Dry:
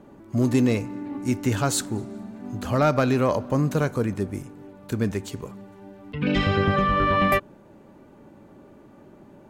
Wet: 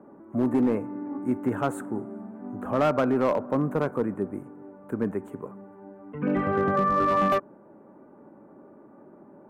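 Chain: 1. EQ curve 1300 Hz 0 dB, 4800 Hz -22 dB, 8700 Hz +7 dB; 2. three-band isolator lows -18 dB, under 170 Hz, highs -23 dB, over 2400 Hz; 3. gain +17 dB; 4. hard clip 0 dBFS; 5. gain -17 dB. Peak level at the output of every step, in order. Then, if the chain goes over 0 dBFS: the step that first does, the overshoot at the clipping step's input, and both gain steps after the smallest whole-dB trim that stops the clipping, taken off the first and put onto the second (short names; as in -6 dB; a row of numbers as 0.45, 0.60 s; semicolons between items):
-9.5, -9.5, +7.5, 0.0, -17.0 dBFS; step 3, 7.5 dB; step 3 +9 dB, step 5 -9 dB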